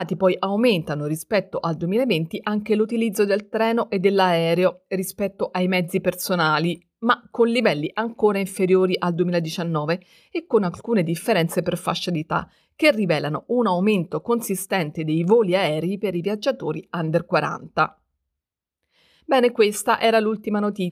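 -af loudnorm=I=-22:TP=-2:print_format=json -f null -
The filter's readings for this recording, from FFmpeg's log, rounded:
"input_i" : "-21.6",
"input_tp" : "-4.2",
"input_lra" : "1.9",
"input_thresh" : "-31.9",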